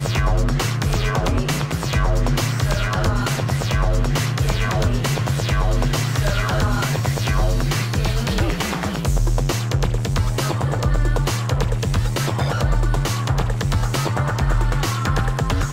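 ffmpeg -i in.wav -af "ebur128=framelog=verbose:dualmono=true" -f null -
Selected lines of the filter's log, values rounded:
Integrated loudness:
  I:         -17.9 LUFS
  Threshold: -27.9 LUFS
Loudness range:
  LRA:         0.8 LU
  Threshold: -37.9 LUFS
  LRA low:   -18.3 LUFS
  LRA high:  -17.5 LUFS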